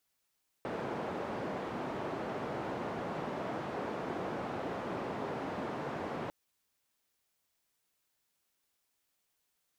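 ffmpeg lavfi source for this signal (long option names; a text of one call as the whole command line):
ffmpeg -f lavfi -i "anoisesrc=color=white:duration=5.65:sample_rate=44100:seed=1,highpass=frequency=140,lowpass=frequency=740,volume=-18dB" out.wav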